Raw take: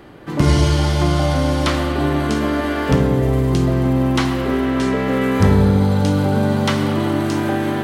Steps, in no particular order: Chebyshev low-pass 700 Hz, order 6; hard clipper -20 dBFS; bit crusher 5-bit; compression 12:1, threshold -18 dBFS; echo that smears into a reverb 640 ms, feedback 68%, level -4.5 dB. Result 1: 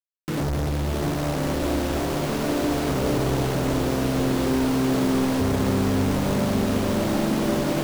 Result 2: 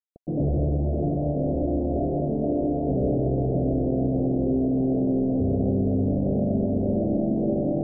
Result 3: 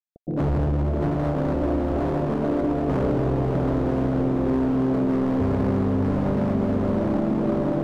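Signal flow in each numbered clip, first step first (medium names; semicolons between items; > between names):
Chebyshev low-pass > hard clipper > compression > bit crusher > echo that smears into a reverb; hard clipper > echo that smears into a reverb > bit crusher > compression > Chebyshev low-pass; bit crusher > Chebyshev low-pass > hard clipper > echo that smears into a reverb > compression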